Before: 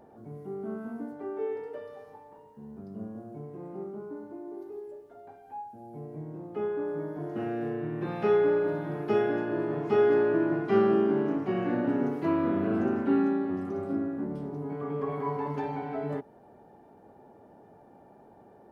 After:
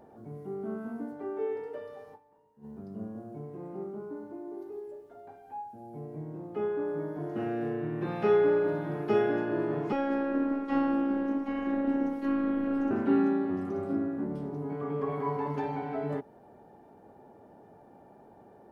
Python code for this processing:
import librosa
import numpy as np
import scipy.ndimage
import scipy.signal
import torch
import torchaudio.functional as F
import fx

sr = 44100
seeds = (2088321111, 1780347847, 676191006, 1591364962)

y = fx.robotise(x, sr, hz=275.0, at=(9.92, 12.91))
y = fx.edit(y, sr, fx.fade_down_up(start_s=2.14, length_s=0.51, db=-13.0, fade_s=0.24, curve='exp'), tone=tone)